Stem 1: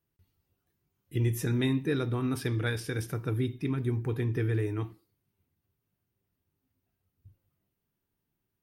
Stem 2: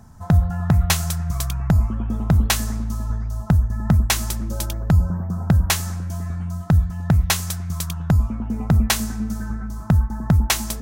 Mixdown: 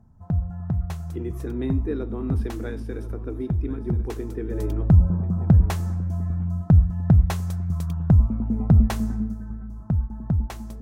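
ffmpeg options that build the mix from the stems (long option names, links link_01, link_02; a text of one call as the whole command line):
ffmpeg -i stem1.wav -i stem2.wav -filter_complex "[0:a]highpass=frequency=250:width=0.5412,highpass=frequency=250:width=1.3066,volume=-5.5dB,asplit=2[link_01][link_02];[link_02]volume=-15dB[link_03];[1:a]volume=-8.5dB,afade=type=in:start_time=4.4:duration=0.34:silence=0.334965,afade=type=out:start_time=9.15:duration=0.22:silence=0.421697[link_04];[link_03]aecho=0:1:1037:1[link_05];[link_01][link_04][link_05]amix=inputs=3:normalize=0,tiltshelf=frequency=1200:gain=10" out.wav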